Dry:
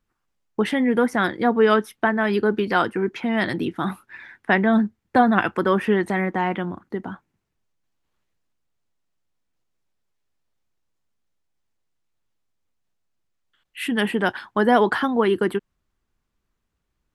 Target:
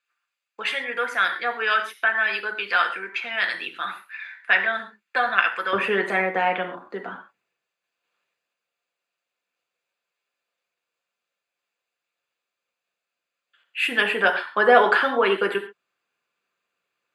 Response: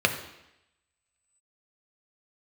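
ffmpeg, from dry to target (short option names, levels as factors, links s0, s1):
-filter_complex "[0:a]asetnsamples=n=441:p=0,asendcmd='5.73 highpass f 600',highpass=1400[s0];[1:a]atrim=start_sample=2205,atrim=end_sample=6174[s1];[s0][s1]afir=irnorm=-1:irlink=0,volume=0.398"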